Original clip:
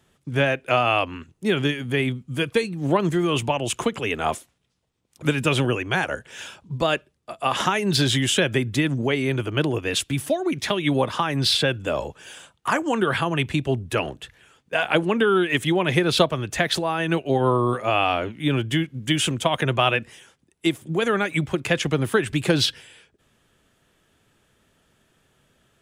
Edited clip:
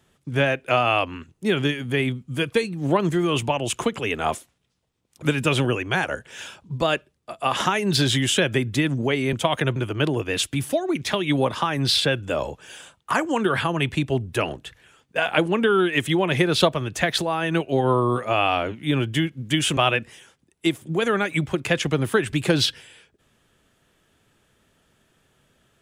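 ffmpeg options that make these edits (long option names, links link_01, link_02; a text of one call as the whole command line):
ffmpeg -i in.wav -filter_complex "[0:a]asplit=4[link_01][link_02][link_03][link_04];[link_01]atrim=end=9.332[link_05];[link_02]atrim=start=19.338:end=19.772[link_06];[link_03]atrim=start=9.328:end=19.342[link_07];[link_04]atrim=start=19.768[link_08];[link_05][link_06]acrossfade=duration=0.004:curve1=hsin:curve2=hsin[link_09];[link_09][link_07]acrossfade=duration=0.004:curve1=hsin:curve2=hsin[link_10];[link_10][link_08]acrossfade=duration=0.004:curve1=hsin:curve2=hsin" out.wav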